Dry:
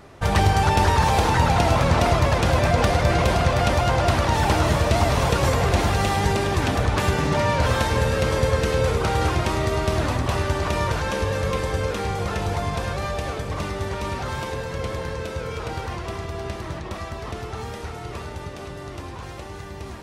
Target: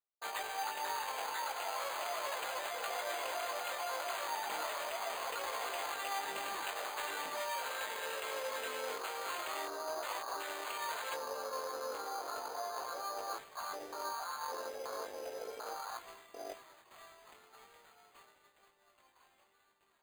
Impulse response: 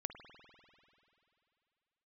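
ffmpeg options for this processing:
-af "highpass=770,afwtdn=0.0355,agate=range=0.0224:threshold=0.00355:ratio=3:detection=peak,areverse,acompressor=threshold=0.0112:ratio=5,areverse,flanger=delay=17.5:depth=3.6:speed=0.38,acrusher=samples=8:mix=1:aa=0.000001,volume=1.5"

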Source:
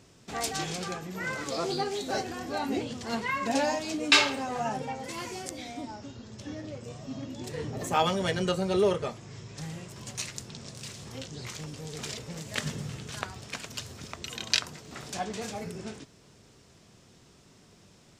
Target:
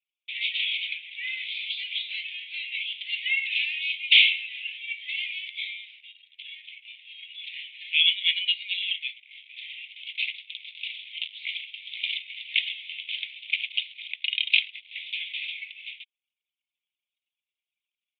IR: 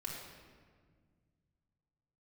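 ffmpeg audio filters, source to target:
-af "afftfilt=real='re*lt(hypot(re,im),0.282)':imag='im*lt(hypot(re,im),0.282)':win_size=1024:overlap=0.75,aeval=exprs='0.596*sin(PI/2*3.98*val(0)/0.596)':c=same,anlmdn=15.8,asuperpass=centerf=2800:order=12:qfactor=1.9"

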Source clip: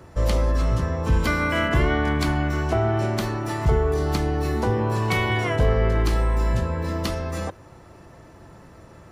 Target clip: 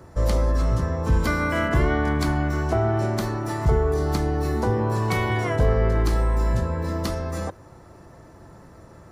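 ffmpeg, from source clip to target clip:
-af "equalizer=f=2800:t=o:w=0.83:g=-7"

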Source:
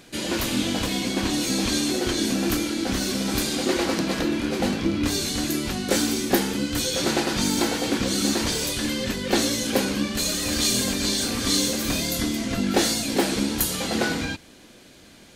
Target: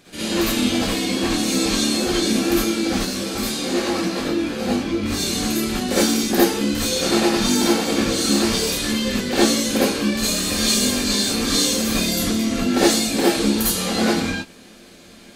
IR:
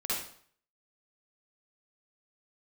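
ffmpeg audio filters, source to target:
-filter_complex "[0:a]asettb=1/sr,asplit=3[s0][s1][s2];[s0]atrim=end=2.994[s3];[s1]atrim=start=2.99:end=5.14,asetpts=PTS-STARTPTS,afade=t=in:d=0.004:c=qsin,afade=t=out:st=2.146:d=0.004:c=qsin,flanger=delay=19:depth=2:speed=2.5[s4];[s2]atrim=start=5.136[s5];[s3][s4]acrossfade=d=0.004:c1=hsin:c2=qsin[s6];[s6][s5]acrossfade=d=0.004:c1=qsin:c2=hsin[s7];[1:a]atrim=start_sample=2205,afade=t=out:st=0.14:d=0.01,atrim=end_sample=6615[s8];[s7][s8]afir=irnorm=-1:irlink=0"

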